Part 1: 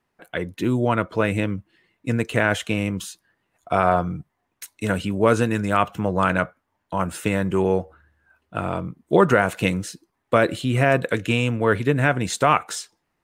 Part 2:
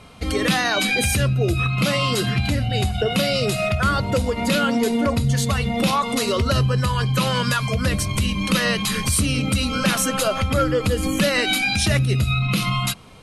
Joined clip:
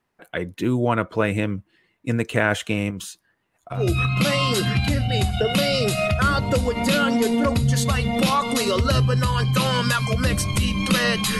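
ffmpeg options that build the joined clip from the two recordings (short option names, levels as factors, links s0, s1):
-filter_complex "[0:a]asettb=1/sr,asplit=3[s0][s1][s2];[s0]atrim=end=2.904[s3];[s1]atrim=start=2.9:end=3.86,asetpts=PTS-STARTPTS,afade=t=in:d=0.004:c=qsin,afade=t=out:st=0.956:d=0.004:c=qsin,acompressor=threshold=0.0447:ratio=4:attack=3.2:release=140:knee=1:detection=peak[s4];[s2]atrim=start=3.856[s5];[s3][s4]acrossfade=d=0.004:c1=hsin:c2=qsin[s6];[s6][s5]acrossfade=d=0.004:c1=qsin:c2=hsin,apad=whole_dur=11.39,atrim=end=11.39,atrim=end=3.86,asetpts=PTS-STARTPTS[s7];[1:a]atrim=start=1.31:end=9,asetpts=PTS-STARTPTS[s8];[s7][s8]acrossfade=d=0.16:c1=tri:c2=tri"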